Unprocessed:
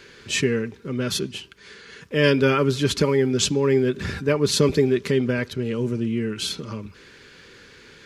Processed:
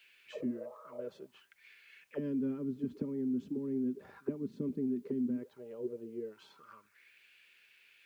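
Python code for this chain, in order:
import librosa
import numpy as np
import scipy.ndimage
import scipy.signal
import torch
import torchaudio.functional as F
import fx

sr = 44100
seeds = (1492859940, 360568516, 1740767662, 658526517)

y = fx.spec_repair(x, sr, seeds[0], start_s=0.35, length_s=0.67, low_hz=400.0, high_hz=1300.0, source='after')
y = fx.auto_wah(y, sr, base_hz=240.0, top_hz=2900.0, q=5.6, full_db=-17.5, direction='down')
y = fx.quant_dither(y, sr, seeds[1], bits=12, dither='triangular')
y = F.gain(torch.from_numpy(y), -6.0).numpy()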